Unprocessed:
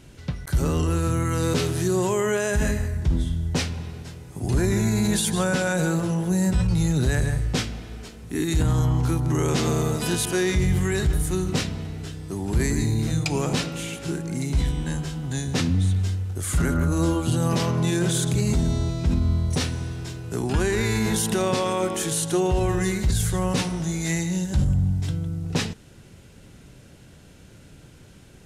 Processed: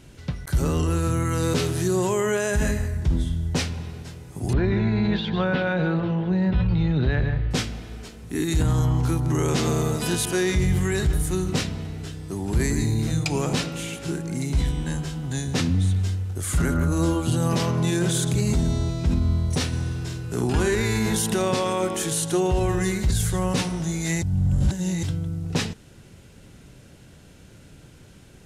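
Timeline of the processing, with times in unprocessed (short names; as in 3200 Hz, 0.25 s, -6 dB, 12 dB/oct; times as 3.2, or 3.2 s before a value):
4.53–7.51 steep low-pass 3800 Hz
19.68–20.75 doubler 49 ms -5.5 dB
24.22–25.03 reverse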